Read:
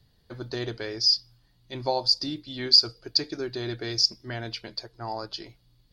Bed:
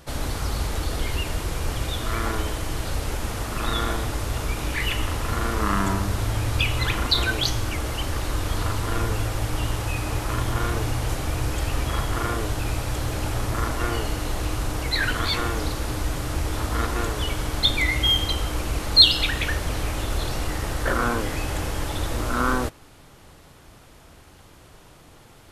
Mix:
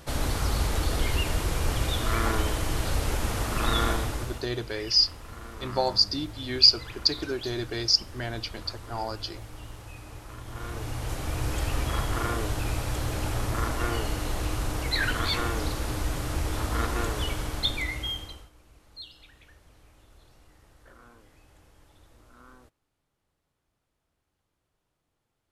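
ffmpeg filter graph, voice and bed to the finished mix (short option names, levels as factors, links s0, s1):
-filter_complex "[0:a]adelay=3900,volume=1.06[s0];[1:a]volume=5.01,afade=t=out:st=3.87:d=0.6:silence=0.141254,afade=t=in:st=10.43:d=1.13:silence=0.199526,afade=t=out:st=17.18:d=1.32:silence=0.0421697[s1];[s0][s1]amix=inputs=2:normalize=0"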